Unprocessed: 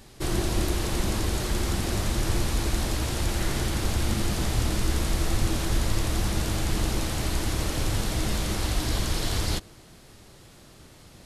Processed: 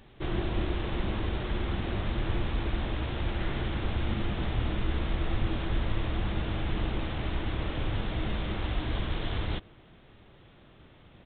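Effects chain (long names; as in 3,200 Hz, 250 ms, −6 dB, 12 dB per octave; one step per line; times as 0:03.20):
downsampling to 8,000 Hz
level −4 dB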